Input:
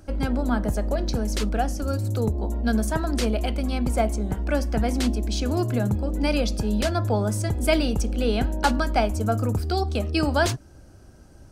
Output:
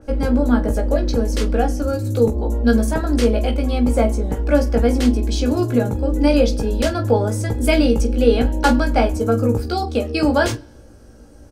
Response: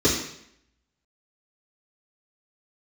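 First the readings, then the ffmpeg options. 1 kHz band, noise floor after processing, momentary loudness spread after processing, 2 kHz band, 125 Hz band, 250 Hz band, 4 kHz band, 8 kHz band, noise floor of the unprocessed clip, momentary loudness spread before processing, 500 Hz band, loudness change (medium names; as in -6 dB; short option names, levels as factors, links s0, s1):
+3.5 dB, -43 dBFS, 5 LU, +4.0 dB, +4.0 dB, +7.0 dB, +2.5 dB, +2.0 dB, -48 dBFS, 4 LU, +8.0 dB, +6.0 dB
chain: -filter_complex "[0:a]equalizer=f=460:t=o:w=0.28:g=12.5,aecho=1:1:3.6:0.41,aecho=1:1:17|45:0.631|0.2,asplit=2[s0][s1];[1:a]atrim=start_sample=2205,asetrate=35280,aresample=44100[s2];[s1][s2]afir=irnorm=-1:irlink=0,volume=0.0106[s3];[s0][s3]amix=inputs=2:normalize=0,adynamicequalizer=threshold=0.0126:dfrequency=3300:dqfactor=0.7:tfrequency=3300:tqfactor=0.7:attack=5:release=100:ratio=0.375:range=2:mode=cutabove:tftype=highshelf,volume=1.19"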